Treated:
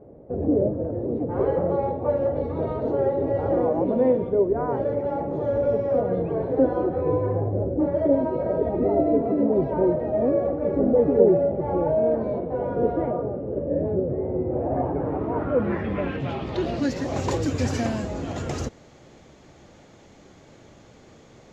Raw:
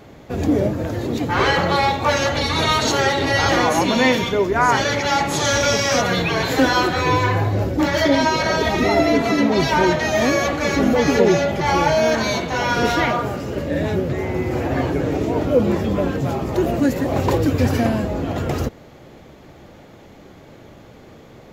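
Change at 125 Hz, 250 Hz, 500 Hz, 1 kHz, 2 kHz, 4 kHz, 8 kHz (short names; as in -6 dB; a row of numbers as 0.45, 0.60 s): -6.5 dB, -5.0 dB, -1.5 dB, -11.5 dB, -21.0 dB, under -20 dB, under -15 dB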